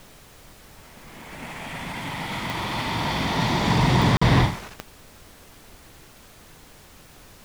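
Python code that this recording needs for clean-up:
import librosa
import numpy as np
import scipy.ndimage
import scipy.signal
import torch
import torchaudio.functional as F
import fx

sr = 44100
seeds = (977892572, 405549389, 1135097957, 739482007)

y = fx.fix_declick_ar(x, sr, threshold=10.0)
y = fx.fix_interpolate(y, sr, at_s=(4.17,), length_ms=45.0)
y = fx.noise_reduce(y, sr, print_start_s=6.0, print_end_s=6.5, reduce_db=19.0)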